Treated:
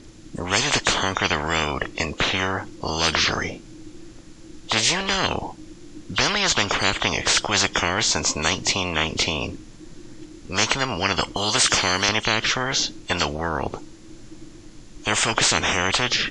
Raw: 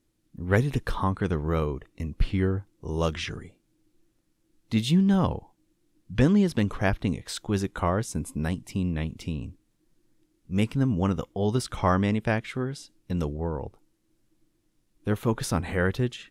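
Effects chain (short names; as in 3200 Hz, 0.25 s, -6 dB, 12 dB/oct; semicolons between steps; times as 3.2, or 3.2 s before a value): nonlinear frequency compression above 2800 Hz 1.5:1; 11.36–12.09 RIAA curve recording; spectral compressor 10:1; gain +4 dB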